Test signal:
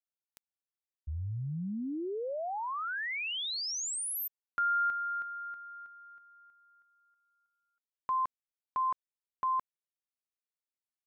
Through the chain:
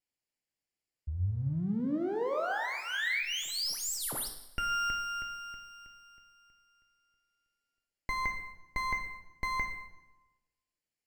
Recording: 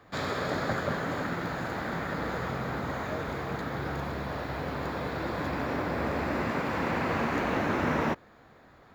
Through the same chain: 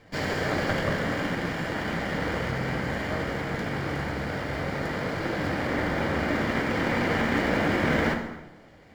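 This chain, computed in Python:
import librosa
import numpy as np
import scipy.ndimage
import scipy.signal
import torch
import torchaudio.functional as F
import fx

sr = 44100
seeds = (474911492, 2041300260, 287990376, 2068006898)

y = fx.lower_of_two(x, sr, delay_ms=0.4)
y = fx.rev_plate(y, sr, seeds[0], rt60_s=1.1, hf_ratio=0.75, predelay_ms=0, drr_db=3.5)
y = fx.dynamic_eq(y, sr, hz=1400.0, q=1.4, threshold_db=-50.0, ratio=4.0, max_db=4)
y = fx.notch(y, sr, hz=2600.0, q=7.2)
y = np.interp(np.arange(len(y)), np.arange(len(y))[::2], y[::2])
y = F.gain(torch.from_numpy(y), 3.0).numpy()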